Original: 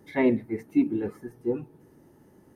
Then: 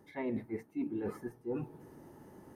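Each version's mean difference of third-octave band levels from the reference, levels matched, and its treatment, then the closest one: 6.5 dB: peaking EQ 910 Hz +5 dB 1.3 oct; reverse; compression 6:1, threshold -36 dBFS, peak gain reduction 18.5 dB; reverse; trim +1 dB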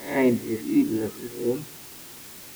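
11.5 dB: reverse spectral sustain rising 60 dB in 0.46 s; in parallel at -4.5 dB: word length cut 6-bit, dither triangular; on the sum: trim -3 dB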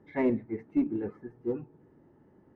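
1.5 dB: low-pass 2 kHz 12 dB/octave; in parallel at -9 dB: one-sided clip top -24 dBFS; on the sum: trim -6.5 dB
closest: third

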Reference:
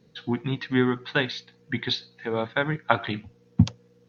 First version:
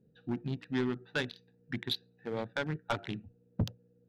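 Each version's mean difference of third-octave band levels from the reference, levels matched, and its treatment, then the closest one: 4.5 dB: local Wiener filter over 41 samples; low-pass 3.6 kHz 6 dB/octave; treble shelf 2.8 kHz +9.5 dB; saturation -17 dBFS, distortion -9 dB; trim -6.5 dB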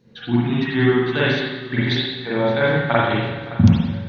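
8.0 dB: dynamic bell 1.1 kHz, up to -5 dB, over -36 dBFS, Q 0.98; shuffle delay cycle 757 ms, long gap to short 3:1, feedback 36%, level -16.5 dB; spring tank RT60 1.1 s, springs 41/50 ms, chirp 50 ms, DRR -8.5 dB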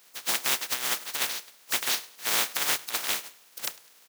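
19.0 dB: spectral contrast reduction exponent 0.11; high-pass 640 Hz 6 dB/octave; compressor with a negative ratio -26 dBFS, ratio -0.5; on a send: feedback delay 102 ms, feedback 39%, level -22 dB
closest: first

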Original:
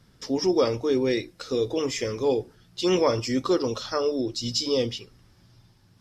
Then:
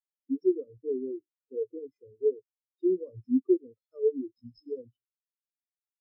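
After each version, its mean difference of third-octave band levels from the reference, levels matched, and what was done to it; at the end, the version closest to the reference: 18.0 dB: in parallel at -9 dB: decimation with a swept rate 36×, swing 100% 0.45 Hz; on the sum: dynamic bell 740 Hz, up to -5 dB, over -35 dBFS, Q 1.2; compression 2:1, threshold -25 dBFS, peak gain reduction 5 dB; spectral contrast expander 4:1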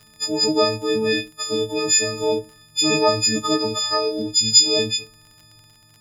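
8.0 dB: partials quantised in pitch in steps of 6 st; dynamic bell 6.7 kHz, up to +6 dB, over -40 dBFS, Q 4.1; crackle 31 per s -38 dBFS; endings held to a fixed fall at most 330 dB/s; trim +1.5 dB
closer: second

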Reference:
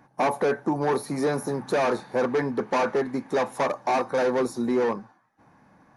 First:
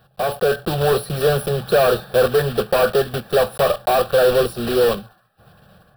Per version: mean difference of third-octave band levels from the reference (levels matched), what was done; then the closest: 7.5 dB: block-companded coder 3-bit; bass shelf 260 Hz +7.5 dB; level rider gain up to 6 dB; static phaser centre 1.4 kHz, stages 8; trim +3 dB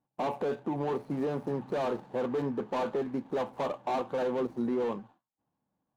4.0 dB: median filter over 25 samples; gate with hold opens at -46 dBFS; treble shelf 2.9 kHz -8 dB; peak limiter -20 dBFS, peak gain reduction 4.5 dB; trim -3.5 dB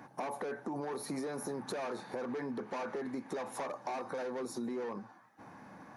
5.0 dB: high-pass 99 Hz; peaking EQ 140 Hz -4.5 dB 0.41 oct; peak limiter -24 dBFS, peak gain reduction 10 dB; compression 3:1, threshold -45 dBFS, peak gain reduction 12.5 dB; trim +5 dB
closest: second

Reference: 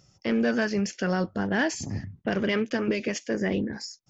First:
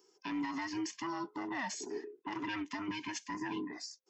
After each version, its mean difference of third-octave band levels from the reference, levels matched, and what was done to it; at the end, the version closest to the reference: 7.0 dB: every band turned upside down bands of 500 Hz; high-pass 310 Hz 12 dB/octave; peak limiter -22 dBFS, peak gain reduction 7 dB; trim -7 dB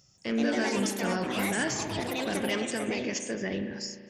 9.5 dB: treble shelf 3.3 kHz +9.5 dB; ever faster or slower copies 180 ms, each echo +4 st, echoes 3; spring tank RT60 2.1 s, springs 35 ms, chirp 45 ms, DRR 7.5 dB; trim -6.5 dB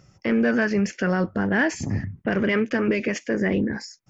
2.0 dB: resonant high shelf 2.8 kHz -7 dB, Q 1.5; in parallel at +2 dB: peak limiter -24 dBFS, peak gain reduction 9.5 dB; on the sum: peaking EQ 750 Hz -2.5 dB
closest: third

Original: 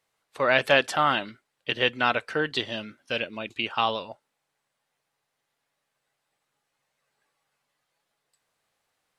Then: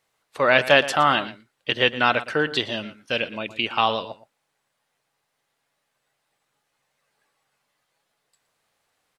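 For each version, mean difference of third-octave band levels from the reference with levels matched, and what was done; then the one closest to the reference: 2.0 dB: wow and flutter 25 cents; echo from a far wall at 20 m, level -15 dB; trim +4 dB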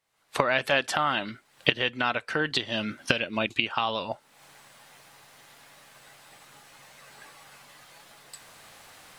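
4.0 dB: recorder AGC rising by 52 dB/s; peaking EQ 450 Hz -3.5 dB 0.65 oct; trim -3.5 dB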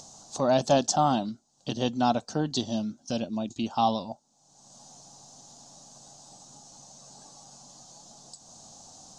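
6.5 dB: FFT filter 120 Hz 0 dB, 230 Hz +6 dB, 460 Hz -11 dB, 750 Hz +1 dB, 2.1 kHz -30 dB, 3.9 kHz -5 dB, 6.6 kHz +11 dB, 13 kHz -29 dB; upward compressor, threshold -34 dBFS; trim +4.5 dB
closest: first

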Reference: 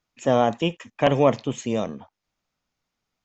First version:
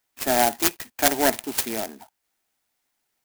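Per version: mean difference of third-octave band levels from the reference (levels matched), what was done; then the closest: 12.5 dB: tracing distortion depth 0.28 ms; tilt EQ +4 dB/octave; static phaser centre 770 Hz, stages 8; sampling jitter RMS 0.092 ms; trim +4 dB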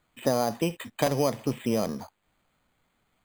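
8.5 dB: companding laws mixed up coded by mu; treble shelf 4.1 kHz +6.5 dB; compression 10:1, threshold -20 dBFS, peak gain reduction 9.5 dB; careless resampling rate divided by 8×, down filtered, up hold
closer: second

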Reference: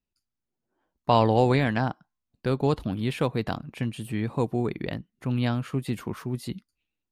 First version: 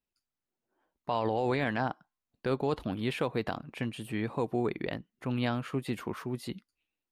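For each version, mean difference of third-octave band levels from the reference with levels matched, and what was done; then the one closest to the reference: 3.0 dB: tone controls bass -8 dB, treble -5 dB; peak limiter -19.5 dBFS, peak gain reduction 10.5 dB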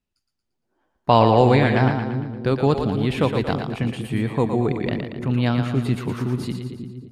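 5.0 dB: treble shelf 10 kHz -11.5 dB; two-band feedback delay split 390 Hz, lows 319 ms, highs 115 ms, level -6 dB; trim +5 dB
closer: first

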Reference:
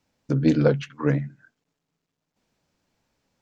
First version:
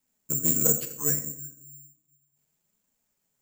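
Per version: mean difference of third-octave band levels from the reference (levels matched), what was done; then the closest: 13.5 dB: one-sided clip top -14 dBFS; flange 0.69 Hz, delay 3.5 ms, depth 5.4 ms, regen +43%; simulated room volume 2700 m³, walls furnished, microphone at 1.4 m; careless resampling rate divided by 6×, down none, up zero stuff; trim -8 dB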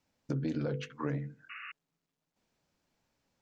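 3.5 dB: hum notches 50/100/150/200/250/300/350/400/450/500 Hz; peak limiter -13.5 dBFS, peak gain reduction 6 dB; compression, threshold -25 dBFS, peak gain reduction 7 dB; painted sound noise, 1.49–1.72 s, 1.1–2.9 kHz -40 dBFS; trim -5 dB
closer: second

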